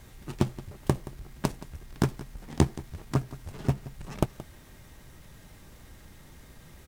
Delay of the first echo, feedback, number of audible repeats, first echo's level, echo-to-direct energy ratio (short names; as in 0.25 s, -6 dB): 0.174 s, no steady repeat, 1, -17.0 dB, -17.0 dB